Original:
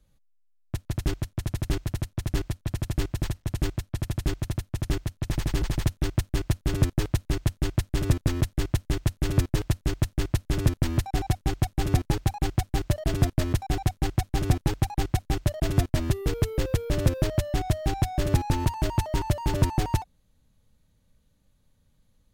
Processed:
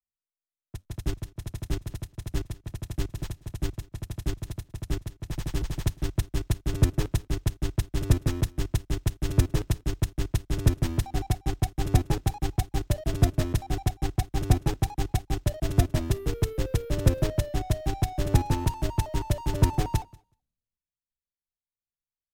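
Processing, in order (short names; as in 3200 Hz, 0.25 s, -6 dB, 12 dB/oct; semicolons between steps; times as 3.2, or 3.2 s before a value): half-wave gain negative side -3 dB; bell 2000 Hz -2.5 dB 1.8 oct; notch 4500 Hz, Q 23; on a send: feedback echo 0.189 s, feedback 26%, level -19 dB; on the sum: three-band expander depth 100%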